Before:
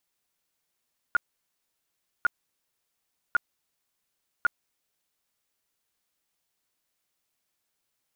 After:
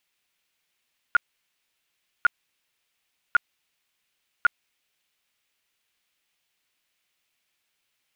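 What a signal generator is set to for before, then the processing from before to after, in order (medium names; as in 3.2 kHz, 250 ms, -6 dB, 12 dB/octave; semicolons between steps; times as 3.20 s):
tone bursts 1.42 kHz, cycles 23, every 1.10 s, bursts 4, -17 dBFS
peaking EQ 2.6 kHz +10.5 dB 1.5 oct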